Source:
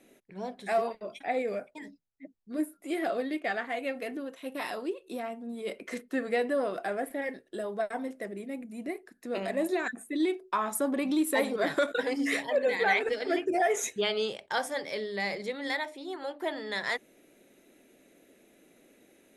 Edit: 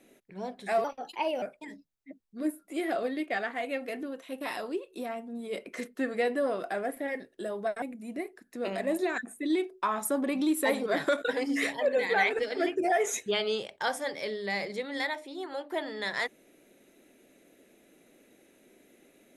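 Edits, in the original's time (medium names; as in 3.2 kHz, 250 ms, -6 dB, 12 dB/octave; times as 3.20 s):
0.84–1.56 s: speed 124%
7.96–8.52 s: delete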